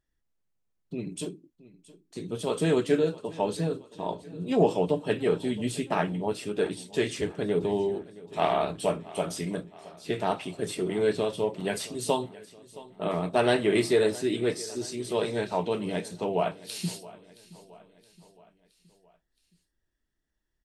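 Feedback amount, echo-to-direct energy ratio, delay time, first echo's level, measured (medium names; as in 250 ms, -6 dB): 52%, -18.0 dB, 670 ms, -19.5 dB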